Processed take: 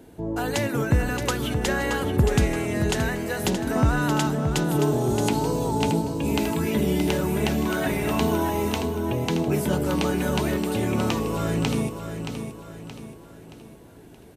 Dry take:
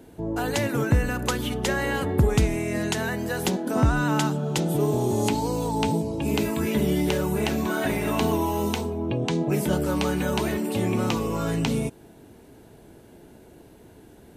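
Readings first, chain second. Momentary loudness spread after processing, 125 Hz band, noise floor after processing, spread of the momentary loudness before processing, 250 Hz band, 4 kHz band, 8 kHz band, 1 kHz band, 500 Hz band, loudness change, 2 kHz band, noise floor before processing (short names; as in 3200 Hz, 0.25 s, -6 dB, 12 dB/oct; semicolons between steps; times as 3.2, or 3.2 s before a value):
8 LU, +1.0 dB, -46 dBFS, 4 LU, +1.0 dB, +0.5 dB, +1.0 dB, +1.0 dB, +0.5 dB, +0.5 dB, +1.0 dB, -50 dBFS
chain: feedback echo 0.624 s, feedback 43%, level -8 dB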